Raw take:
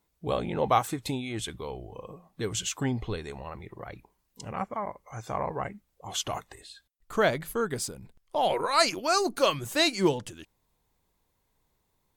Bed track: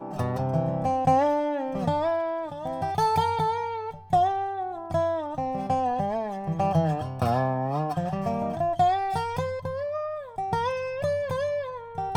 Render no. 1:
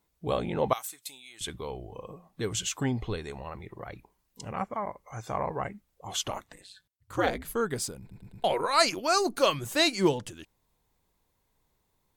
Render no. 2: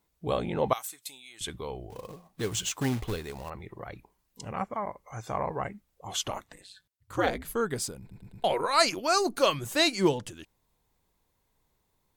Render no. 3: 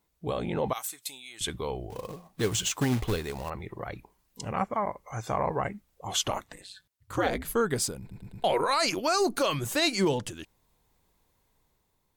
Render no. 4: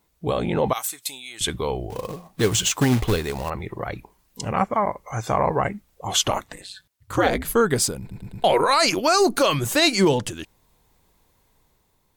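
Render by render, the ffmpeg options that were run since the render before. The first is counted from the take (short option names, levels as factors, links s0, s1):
-filter_complex "[0:a]asettb=1/sr,asplit=3[s0][s1][s2];[s0]atrim=end=0.734[s3];[s1]atrim=start=0.73:end=1.41,asetpts=PTS-STARTPTS,afade=t=in:d=0.004:c=qsin,afade=t=out:st=0.676:d=0.004:c=qsin,aderivative[s4];[s2]atrim=start=1.406[s5];[s3][s4]acrossfade=d=0.004:c1=hsin:c2=qsin[s6];[s6][s5]acrossfade=d=0.004:c1=qsin:c2=hsin,asettb=1/sr,asplit=3[s7][s8][s9];[s7]atrim=end=6.304[s10];[s8]atrim=start=6.3:end=7.45,asetpts=PTS-STARTPTS,afade=t=in:d=0.004:c=qsin,afade=t=out:st=1.146:d=0.004:c=qsin,aeval=exprs='val(0)*sin(2*PI*96*n/s)':c=same[s11];[s9]atrim=start=7.446[s12];[s10][s11]acrossfade=d=0.004:c1=hsin:c2=qsin[s13];[s13][s12]acrossfade=d=0.004:c1=qsin:c2=hsin,asplit=5[s14][s15][s16][s17][s18];[s14]atrim=end=8.112[s19];[s15]atrim=start=7.998:end=8.112[s20];[s16]atrim=start=7.998:end=8.112[s21];[s17]atrim=start=7.998:end=8.112[s22];[s18]atrim=start=8.438[s23];[s19][s20]acrossfade=d=0.004:c1=hsin:c2=hsin[s24];[s24][s21]acrossfade=d=0.004:c1=hsin:c2=hsin[s25];[s25][s22]acrossfade=d=0.004:c1=hsin:c2=hsin[s26];[s26][s23]acrossfade=d=0.004:c1=hsin:c2=hsin"
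-filter_complex "[0:a]asettb=1/sr,asplit=3[s0][s1][s2];[s0]atrim=end=1.904[s3];[s1]atrim=start=1.9:end=3.5,asetpts=PTS-STARTPTS,afade=t=in:d=0.004:c=qsin,afade=t=out:st=1.596:d=0.004:c=qsin,acrusher=bits=3:mode=log:mix=0:aa=0.000001[s4];[s2]atrim=start=3.496[s5];[s3][s4]acrossfade=d=0.004:c1=hsin:c2=qsin[s6];[s6][s5]acrossfade=d=0.004:c1=qsin:c2=hsin"
-af "alimiter=limit=0.1:level=0:latency=1:release=47,dynaudnorm=f=200:g=7:m=1.58"
-af "volume=2.37"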